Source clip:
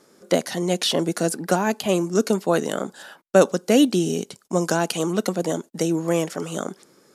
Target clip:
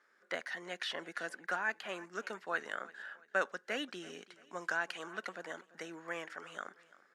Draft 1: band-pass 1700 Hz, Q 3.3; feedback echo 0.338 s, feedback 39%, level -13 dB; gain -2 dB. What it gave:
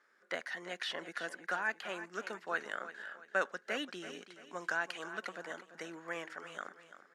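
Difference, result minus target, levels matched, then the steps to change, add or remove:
echo-to-direct +7 dB
change: feedback echo 0.338 s, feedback 39%, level -20 dB

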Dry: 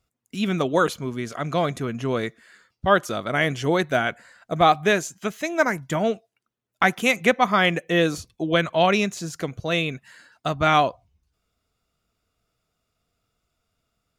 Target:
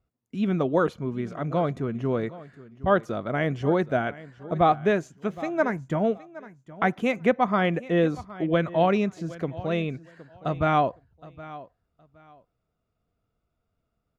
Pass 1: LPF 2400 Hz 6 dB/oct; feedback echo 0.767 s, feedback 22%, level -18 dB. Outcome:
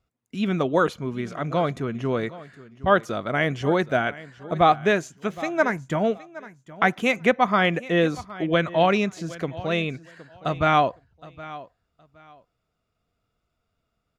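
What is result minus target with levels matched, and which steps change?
2000 Hz band +4.0 dB
change: LPF 760 Hz 6 dB/oct

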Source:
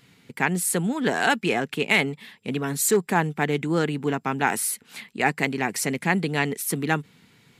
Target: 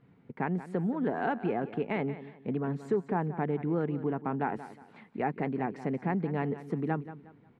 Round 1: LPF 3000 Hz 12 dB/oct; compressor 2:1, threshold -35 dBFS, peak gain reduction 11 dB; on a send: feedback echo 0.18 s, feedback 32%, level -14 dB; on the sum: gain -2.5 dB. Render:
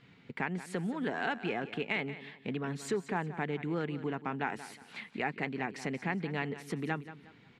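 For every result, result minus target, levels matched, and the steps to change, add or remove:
4000 Hz band +15.0 dB; compressor: peak gain reduction +4.5 dB
change: LPF 970 Hz 12 dB/oct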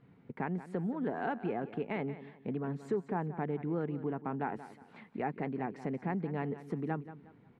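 compressor: peak gain reduction +4.5 dB
change: compressor 2:1, threshold -26 dBFS, peak gain reduction 6 dB

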